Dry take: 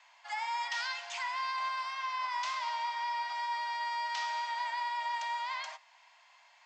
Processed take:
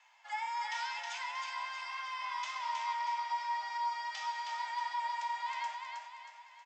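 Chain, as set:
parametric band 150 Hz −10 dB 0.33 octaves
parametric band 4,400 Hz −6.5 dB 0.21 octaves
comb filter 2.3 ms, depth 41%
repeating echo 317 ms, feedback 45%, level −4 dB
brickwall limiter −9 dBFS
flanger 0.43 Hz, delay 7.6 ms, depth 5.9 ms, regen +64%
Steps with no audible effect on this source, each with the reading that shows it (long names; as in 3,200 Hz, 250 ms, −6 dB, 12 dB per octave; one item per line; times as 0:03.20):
parametric band 150 Hz: nothing at its input below 600 Hz
brickwall limiter −9 dBFS: peak of its input −21.0 dBFS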